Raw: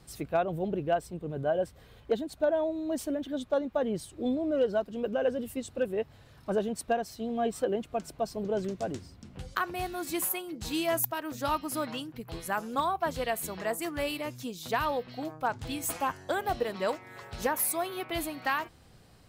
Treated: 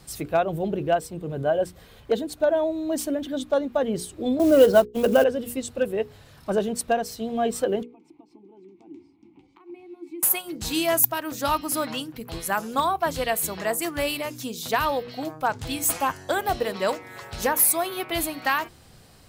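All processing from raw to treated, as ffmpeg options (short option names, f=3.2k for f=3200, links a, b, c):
-filter_complex "[0:a]asettb=1/sr,asplit=3[a][b][c];[a]atrim=end=4.394[d];[b]atrim=start=4.39:end=5.24,asetpts=PTS-STARTPTS,afade=t=in:d=0.004:c=qsin,afade=t=out:st=0.846:d=0.004:c=qsin,agate=range=-48dB:threshold=-37dB:ratio=16:release=100:detection=peak,acontrast=80,acrusher=bits=7:mode=log:mix=0:aa=0.000001[e];[c]atrim=start=5.236[f];[d][e]acrossfade=d=0.004:c1=hsin:c2=qsin[g];[g][f]acrossfade=d=0.004:c1=qsin:c2=hsin,asettb=1/sr,asplit=3[h][i][j];[h]atrim=end=7.834[k];[i]atrim=start=7.83:end=10.23,asetpts=PTS-STARTPTS,afade=t=in:d=0.004:c=qsin,afade=t=out:st=2.396:d=0.004:c=qsin,acompressor=threshold=-40dB:ratio=5:attack=3.2:release=140:knee=1:detection=peak,asplit=3[l][m][n];[l]bandpass=f=300:t=q:w=8,volume=0dB[o];[m]bandpass=f=870:t=q:w=8,volume=-6dB[p];[n]bandpass=f=2.24k:t=q:w=8,volume=-9dB[q];[o][p][q]amix=inputs=3:normalize=0,equalizer=f=350:t=o:w=0.23:g=12[r];[j]atrim=start=10.226[s];[k][r]acrossfade=d=0.004:c1=hsin:c2=qsin[t];[t][s]acrossfade=d=0.004:c1=qsin:c2=hsin,highshelf=f=4.3k:g=5.5,bandreject=f=60:t=h:w=6,bandreject=f=120:t=h:w=6,bandreject=f=180:t=h:w=6,bandreject=f=240:t=h:w=6,bandreject=f=300:t=h:w=6,bandreject=f=360:t=h:w=6,bandreject=f=420:t=h:w=6,bandreject=f=480:t=h:w=6,volume=5.5dB"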